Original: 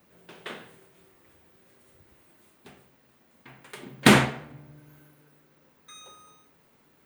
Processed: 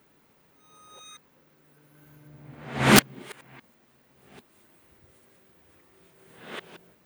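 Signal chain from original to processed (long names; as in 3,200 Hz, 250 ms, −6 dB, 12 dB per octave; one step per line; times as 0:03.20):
played backwards from end to start
wrap-around overflow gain 5 dB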